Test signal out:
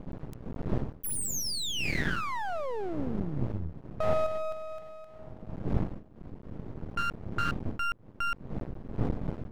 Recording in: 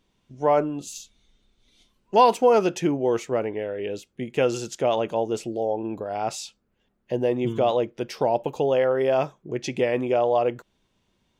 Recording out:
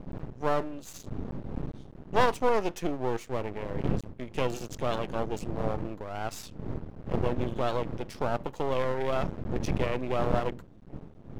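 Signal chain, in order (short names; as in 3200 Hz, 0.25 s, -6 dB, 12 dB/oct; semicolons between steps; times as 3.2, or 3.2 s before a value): wind noise 190 Hz -28 dBFS; bell 64 Hz -10.5 dB 0.22 oct; half-wave rectifier; gain -4 dB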